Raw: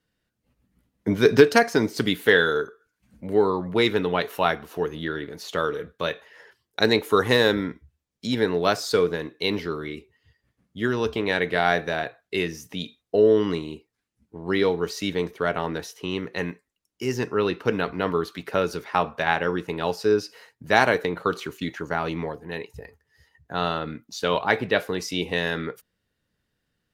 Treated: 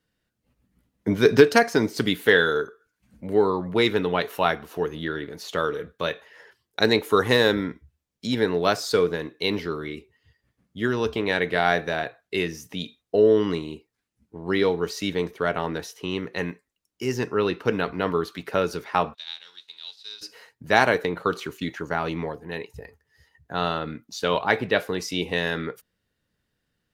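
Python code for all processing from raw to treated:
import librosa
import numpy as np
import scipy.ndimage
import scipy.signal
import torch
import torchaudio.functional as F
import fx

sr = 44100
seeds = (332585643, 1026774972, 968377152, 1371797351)

y = fx.envelope_flatten(x, sr, power=0.6, at=(19.13, 20.21), fade=0.02)
y = fx.bandpass_q(y, sr, hz=3800.0, q=9.4, at=(19.13, 20.21), fade=0.02)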